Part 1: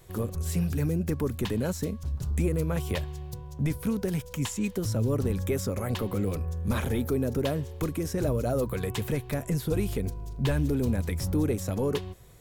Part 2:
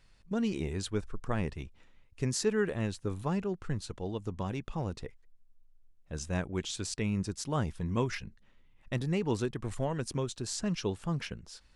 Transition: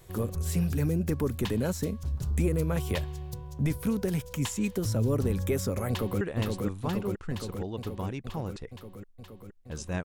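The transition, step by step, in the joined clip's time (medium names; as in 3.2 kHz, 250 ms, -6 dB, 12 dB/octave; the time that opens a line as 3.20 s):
part 1
5.89–6.21 s: echo throw 470 ms, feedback 75%, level -2.5 dB
6.21 s: go over to part 2 from 2.62 s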